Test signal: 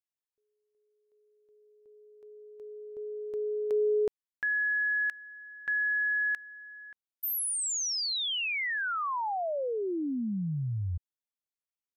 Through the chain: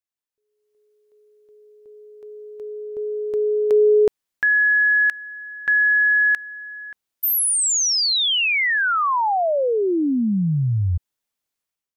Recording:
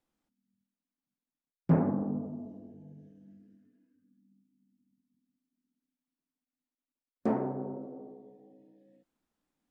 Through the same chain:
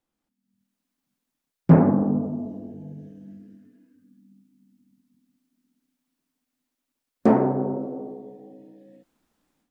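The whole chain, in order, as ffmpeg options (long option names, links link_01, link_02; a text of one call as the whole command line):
ffmpeg -i in.wav -af "dynaudnorm=framelen=400:gausssize=3:maxgain=12dB" out.wav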